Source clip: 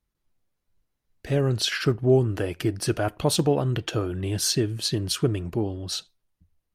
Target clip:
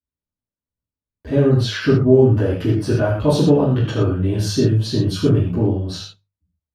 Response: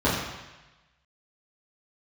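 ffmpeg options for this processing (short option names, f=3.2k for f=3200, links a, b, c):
-filter_complex "[0:a]agate=range=-19dB:threshold=-50dB:ratio=16:detection=peak,bandreject=f=50:t=h:w=6,bandreject=f=100:t=h:w=6,bandreject=f=150:t=h:w=6[a];[1:a]atrim=start_sample=2205,atrim=end_sample=6174[b];[a][b]afir=irnorm=-1:irlink=0,volume=-12dB"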